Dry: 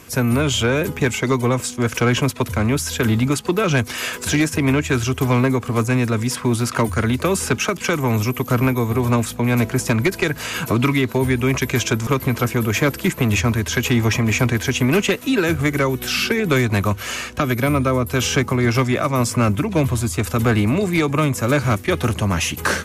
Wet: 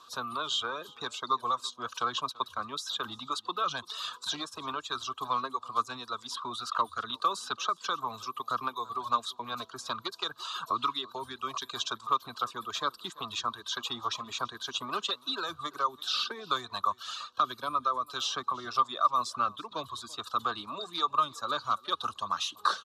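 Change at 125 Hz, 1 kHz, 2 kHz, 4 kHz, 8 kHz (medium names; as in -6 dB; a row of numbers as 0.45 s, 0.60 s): -35.0 dB, -3.5 dB, -18.0 dB, -6.0 dB, -17.0 dB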